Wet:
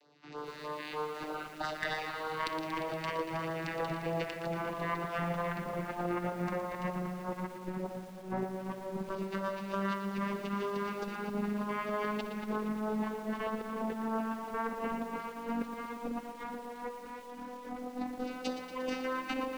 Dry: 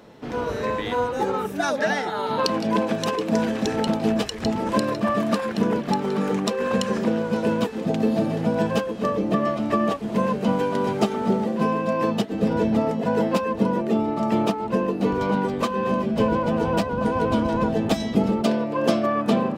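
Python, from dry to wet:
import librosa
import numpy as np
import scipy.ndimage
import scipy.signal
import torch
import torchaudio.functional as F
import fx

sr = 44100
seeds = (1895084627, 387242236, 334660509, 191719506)

p1 = fx.vocoder_glide(x, sr, note=50, semitones=10)
p2 = fx.peak_eq(p1, sr, hz=3300.0, db=-10.0, octaves=0.26)
p3 = fx.filter_lfo_bandpass(p2, sr, shape='saw_down', hz=0.11, low_hz=810.0, high_hz=3800.0, q=1.5)
p4 = fx.low_shelf(p3, sr, hz=150.0, db=2.5)
p5 = fx.cheby_harmonics(p4, sr, harmonics=(6,), levels_db=(-18,), full_scale_db=-20.0)
p6 = fx.filter_lfo_notch(p5, sr, shape='sine', hz=3.2, low_hz=460.0, high_hz=2500.0, q=1.1)
p7 = 10.0 ** (-33.5 / 20.0) * (np.abs((p6 / 10.0 ** (-33.5 / 20.0) + 3.0) % 4.0 - 2.0) - 1.0)
p8 = p6 + F.gain(torch.from_numpy(p7), -5.0).numpy()
p9 = fx.echo_feedback(p8, sr, ms=60, feedback_pct=38, wet_db=-17.5)
p10 = fx.over_compress(p9, sr, threshold_db=-39.0, ratio=-0.5)
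p11 = fx.echo_crushed(p10, sr, ms=117, feedback_pct=80, bits=9, wet_db=-9.5)
y = F.gain(torch.from_numpy(p11), 3.0).numpy()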